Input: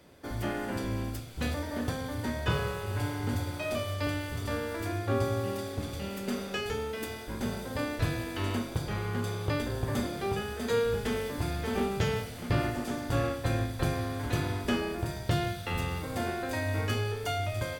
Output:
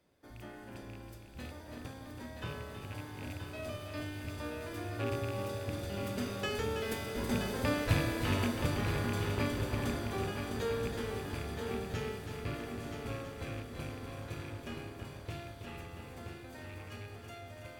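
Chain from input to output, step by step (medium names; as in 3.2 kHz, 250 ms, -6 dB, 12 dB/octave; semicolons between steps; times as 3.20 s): rattle on loud lows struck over -28 dBFS, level -25 dBFS; Doppler pass-by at 7.72 s, 6 m/s, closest 7.6 m; multi-head delay 325 ms, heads first and third, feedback 59%, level -8 dB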